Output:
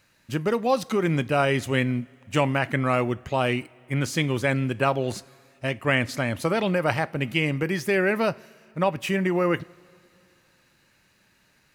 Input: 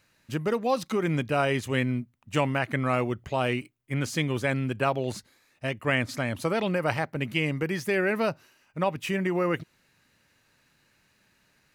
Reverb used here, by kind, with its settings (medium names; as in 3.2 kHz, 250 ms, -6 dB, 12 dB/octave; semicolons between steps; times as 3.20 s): two-slope reverb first 0.33 s, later 2.8 s, from -18 dB, DRR 16.5 dB; trim +3 dB